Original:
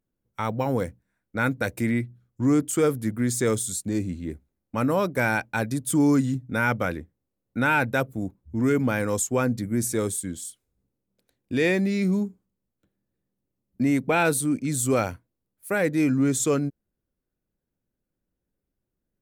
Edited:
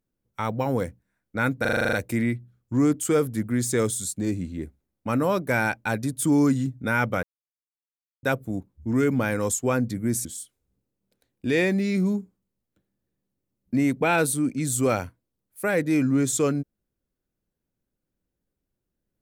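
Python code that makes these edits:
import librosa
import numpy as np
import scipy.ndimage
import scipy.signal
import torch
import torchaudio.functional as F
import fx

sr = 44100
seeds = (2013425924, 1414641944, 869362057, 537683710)

y = fx.edit(x, sr, fx.stutter(start_s=1.61, slice_s=0.04, count=9),
    fx.silence(start_s=6.91, length_s=1.0),
    fx.cut(start_s=9.93, length_s=0.39), tone=tone)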